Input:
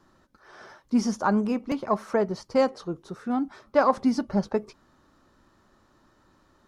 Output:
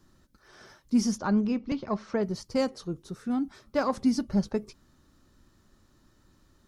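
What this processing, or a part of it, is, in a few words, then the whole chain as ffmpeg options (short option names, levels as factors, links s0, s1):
smiley-face EQ: -filter_complex "[0:a]lowshelf=f=120:g=6,equalizer=f=870:t=o:w=2.3:g=-9,highshelf=f=7000:g=7,asettb=1/sr,asplit=3[s0][s1][s2];[s0]atrim=end=1.184[s3];[s1]atrim=start=1.18:end=2.23,asetpts=PTS-STARTPTS,afade=t=in:d=0.004:c=qsin,afade=t=out:st=1.046:d=0.004:c=qsin,lowpass=f=5300:w=0.5412,lowpass=f=5300:w=1.3066[s4];[s2]atrim=start=2.226[s5];[s3][s4]acrossfade=d=0.004:c1=hsin:c2=qsin[s6];[s6][s5]acrossfade=d=0.004:c1=qsin:c2=hsin"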